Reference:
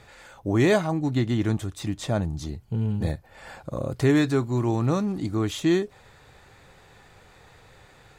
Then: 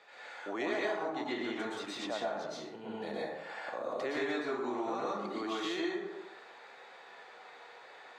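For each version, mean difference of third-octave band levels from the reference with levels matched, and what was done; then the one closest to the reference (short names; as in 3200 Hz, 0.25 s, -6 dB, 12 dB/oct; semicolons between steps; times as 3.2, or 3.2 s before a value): 11.0 dB: HPF 170 Hz 24 dB/oct; three-band isolator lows -23 dB, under 410 Hz, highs -19 dB, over 5400 Hz; plate-style reverb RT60 0.78 s, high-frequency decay 0.55×, pre-delay 0.105 s, DRR -7 dB; compressor 3:1, threshold -29 dBFS, peak gain reduction 12 dB; gain -5 dB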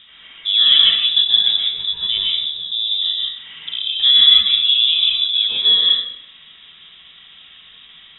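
16.0 dB: bell 310 Hz +15 dB 2.9 oct; inverted band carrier 3700 Hz; in parallel at -3 dB: compressor, threshold -28 dBFS, peak gain reduction 23 dB; on the sum: plate-style reverb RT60 0.91 s, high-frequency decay 0.6×, pre-delay 0.115 s, DRR -4 dB; gain -8 dB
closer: first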